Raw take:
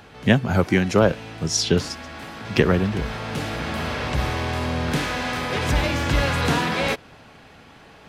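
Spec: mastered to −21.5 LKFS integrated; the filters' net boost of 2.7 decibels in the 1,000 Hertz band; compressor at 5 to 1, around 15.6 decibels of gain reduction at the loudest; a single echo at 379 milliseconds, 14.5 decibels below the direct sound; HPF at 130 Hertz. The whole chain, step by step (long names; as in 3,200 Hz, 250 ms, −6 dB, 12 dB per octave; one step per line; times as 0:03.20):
high-pass filter 130 Hz
parametric band 1,000 Hz +3.5 dB
downward compressor 5 to 1, threshold −29 dBFS
single-tap delay 379 ms −14.5 dB
level +10.5 dB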